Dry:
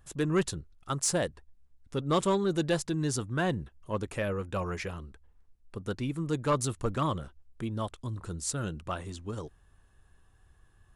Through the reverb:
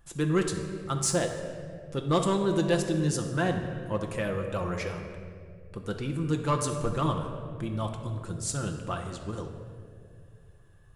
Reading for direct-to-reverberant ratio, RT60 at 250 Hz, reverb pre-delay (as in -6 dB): 3.0 dB, 3.0 s, 6 ms